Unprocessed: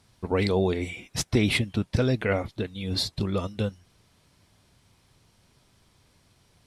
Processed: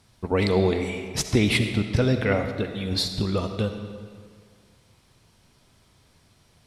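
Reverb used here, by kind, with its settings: algorithmic reverb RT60 1.9 s, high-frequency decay 0.8×, pre-delay 25 ms, DRR 7 dB; trim +2 dB

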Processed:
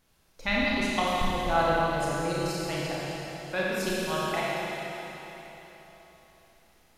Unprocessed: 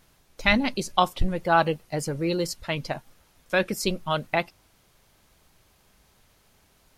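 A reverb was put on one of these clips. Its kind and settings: Schroeder reverb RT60 3.8 s, combs from 28 ms, DRR -6.5 dB; trim -9.5 dB

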